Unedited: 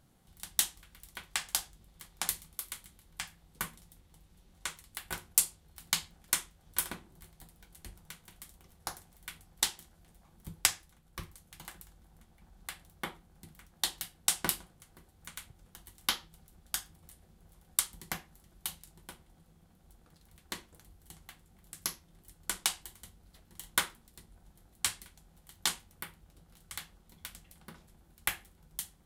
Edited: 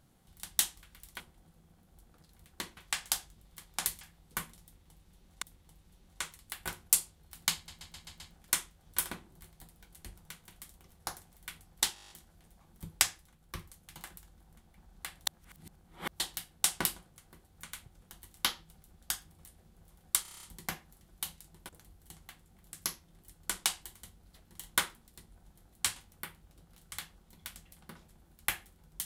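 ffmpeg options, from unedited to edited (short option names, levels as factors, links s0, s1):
-filter_complex "[0:a]asplit=29[s0][s1][s2][s3][s4][s5][s6][s7][s8][s9][s10][s11][s12][s13][s14][s15][s16][s17][s18][s19][s20][s21][s22][s23][s24][s25][s26][s27][s28];[s0]atrim=end=1.202[s29];[s1]atrim=start=19.118:end=20.692[s30];[s2]atrim=start=1.198:end=2.442[s31];[s3]atrim=start=3.248:end=4.662[s32];[s4]atrim=start=3.868:end=6.132[s33];[s5]atrim=start=5.998:end=6.132[s34];[s6]atrim=start=5.998:end=6.132[s35];[s7]atrim=start=5.998:end=6.132[s36];[s8]atrim=start=5.998:end=6.132[s37];[s9]atrim=start=5.998:end=9.762[s38];[s10]atrim=start=9.738:end=9.762[s39];[s11]atrim=start=9.738:end=9.762[s40];[s12]atrim=start=9.738:end=9.762[s41];[s13]atrim=start=9.738:end=9.762[s42];[s14]atrim=start=9.738:end=9.762[s43];[s15]atrim=start=9.738:end=9.762[s44];[s16]atrim=start=9.738:end=9.762[s45];[s17]atrim=start=9.738:end=12.912[s46];[s18]atrim=start=12.908:end=13.842,asetpts=PTS-STARTPTS,areverse[s47];[s19]atrim=start=13.838:end=17.892[s48];[s20]atrim=start=17.858:end=17.892[s49];[s21]atrim=start=17.858:end=17.892[s50];[s22]atrim=start=17.858:end=17.892[s51];[s23]atrim=start=17.858:end=17.892[s52];[s24]atrim=start=17.858:end=17.892[s53];[s25]atrim=start=17.858:end=17.892[s54];[s26]atrim=start=17.858:end=19.122[s55];[s27]atrim=start=20.688:end=24.962[s56];[s28]atrim=start=25.748[s57];[s29][s30]acrossfade=d=0.004:c1=hsin:c2=hsin[s58];[s58][s31]acrossfade=d=0.004:c1=hsin:c2=hsin[s59];[s59][s32]acrossfade=d=0.004:c1=hsin:c2=hsin[s60];[s60][s33]acrossfade=d=0.004:c1=hsin:c2=hsin[s61];[s61][s34]acrossfade=d=0.004:c1=hsin:c2=hsin[s62];[s62][s35]acrossfade=d=0.004:c1=hsin:c2=hsin[s63];[s63][s36]acrossfade=d=0.004:c1=hsin:c2=hsin[s64];[s64][s37]acrossfade=d=0.004:c1=hsin:c2=hsin[s65];[s65][s38]acrossfade=d=0.004:c1=hsin:c2=hsin[s66];[s66][s39]acrossfade=d=0.004:c1=hsin:c2=hsin[s67];[s67][s40]acrossfade=d=0.004:c1=hsin:c2=hsin[s68];[s68][s41]acrossfade=d=0.004:c1=hsin:c2=hsin[s69];[s69][s42]acrossfade=d=0.004:c1=hsin:c2=hsin[s70];[s70][s43]acrossfade=d=0.004:c1=hsin:c2=hsin[s71];[s71][s44]acrossfade=d=0.004:c1=hsin:c2=hsin[s72];[s72][s45]acrossfade=d=0.004:c1=hsin:c2=hsin[s73];[s73][s46]acrossfade=d=0.004:c1=hsin:c2=hsin[s74];[s74][s47]acrossfade=d=0.004:c1=hsin:c2=hsin[s75];[s75][s48]acrossfade=d=0.004:c1=hsin:c2=hsin[s76];[s76][s49]acrossfade=d=0.004:c1=hsin:c2=hsin[s77];[s77][s50]acrossfade=d=0.004:c1=hsin:c2=hsin[s78];[s78][s51]acrossfade=d=0.004:c1=hsin:c2=hsin[s79];[s79][s52]acrossfade=d=0.004:c1=hsin:c2=hsin[s80];[s80][s53]acrossfade=d=0.004:c1=hsin:c2=hsin[s81];[s81][s54]acrossfade=d=0.004:c1=hsin:c2=hsin[s82];[s82][s55]acrossfade=d=0.004:c1=hsin:c2=hsin[s83];[s83][s56]acrossfade=d=0.004:c1=hsin:c2=hsin[s84];[s84][s57]acrossfade=d=0.004:c1=hsin:c2=hsin"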